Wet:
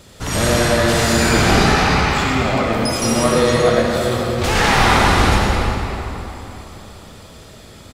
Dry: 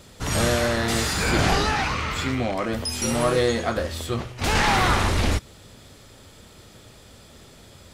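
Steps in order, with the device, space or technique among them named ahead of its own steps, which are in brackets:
cave (single-tap delay 290 ms −12 dB; convolution reverb RT60 3.4 s, pre-delay 61 ms, DRR −2.5 dB)
level +3 dB

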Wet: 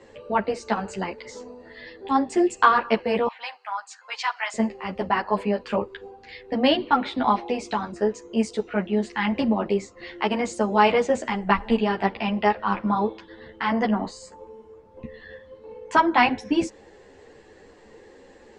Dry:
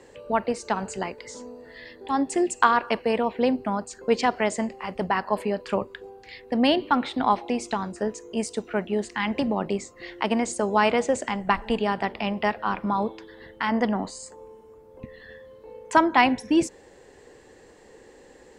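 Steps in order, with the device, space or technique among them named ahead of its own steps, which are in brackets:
0:03.27–0:04.54: inverse Chebyshev high-pass filter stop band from 350 Hz, stop band 50 dB
string-machine ensemble chorus (string-ensemble chorus; low-pass filter 5,500 Hz 12 dB per octave)
level +4.5 dB

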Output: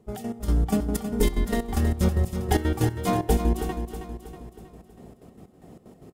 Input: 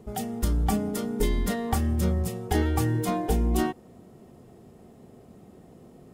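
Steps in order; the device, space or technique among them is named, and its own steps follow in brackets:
trance gate with a delay (gate pattern ".x.x..xx" 187 BPM −12 dB; repeating echo 320 ms, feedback 49%, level −9 dB)
level +3.5 dB

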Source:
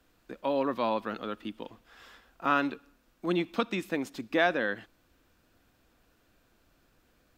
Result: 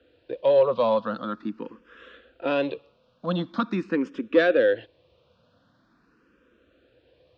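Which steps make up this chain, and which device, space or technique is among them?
barber-pole phaser into a guitar amplifier (frequency shifter mixed with the dry sound +0.44 Hz; soft clipping −22 dBFS, distortion −17 dB; loudspeaker in its box 85–4,100 Hz, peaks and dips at 510 Hz +9 dB, 790 Hz −8 dB, 2,100 Hz −9 dB)
level +8.5 dB

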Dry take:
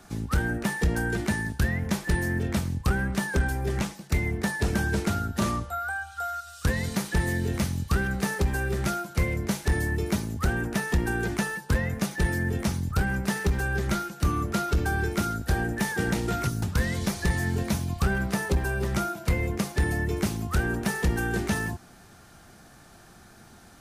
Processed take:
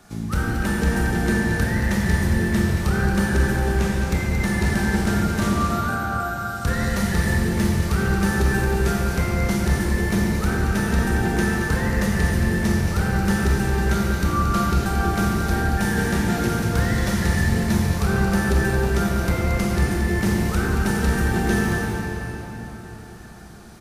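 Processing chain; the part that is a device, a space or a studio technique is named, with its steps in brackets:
cave (single-tap delay 226 ms −8.5 dB; convolution reverb RT60 4.1 s, pre-delay 28 ms, DRR −3.5 dB)

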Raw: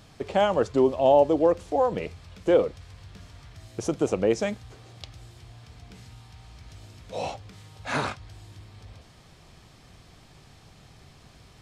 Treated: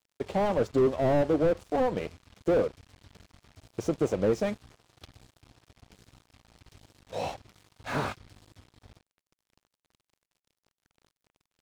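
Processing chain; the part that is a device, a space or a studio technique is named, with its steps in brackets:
early transistor amplifier (dead-zone distortion −44.5 dBFS; slew-rate limiting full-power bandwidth 43 Hz)

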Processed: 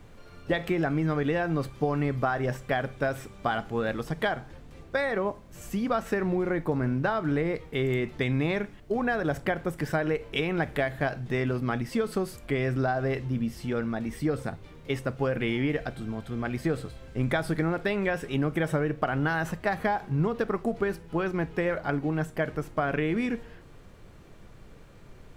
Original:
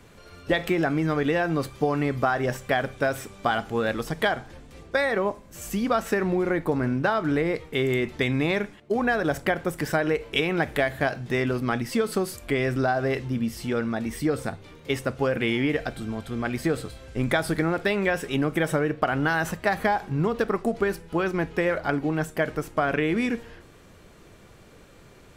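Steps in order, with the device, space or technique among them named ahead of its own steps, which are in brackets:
car interior (parametric band 140 Hz +4 dB 0.71 octaves; high-shelf EQ 3,800 Hz −6 dB; brown noise bed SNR 21 dB)
level −3.5 dB

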